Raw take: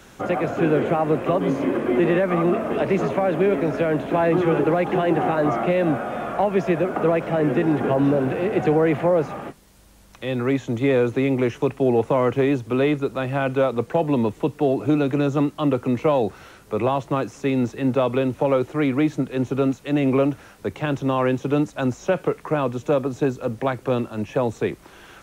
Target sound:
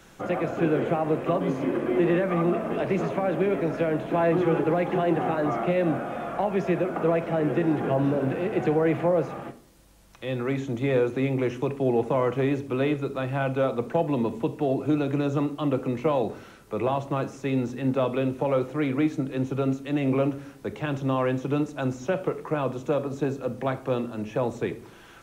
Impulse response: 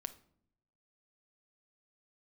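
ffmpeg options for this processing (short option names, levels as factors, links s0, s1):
-filter_complex "[1:a]atrim=start_sample=2205[s0];[0:a][s0]afir=irnorm=-1:irlink=0,volume=0.794"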